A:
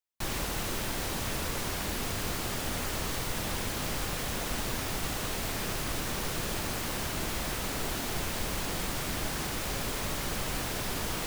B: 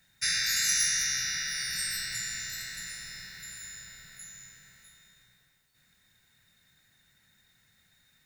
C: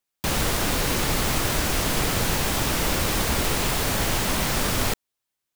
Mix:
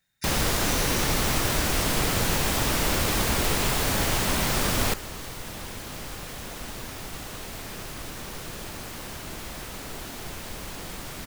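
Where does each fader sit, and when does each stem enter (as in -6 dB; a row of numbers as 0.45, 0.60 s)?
-4.0, -10.0, -1.0 dB; 2.10, 0.00, 0.00 s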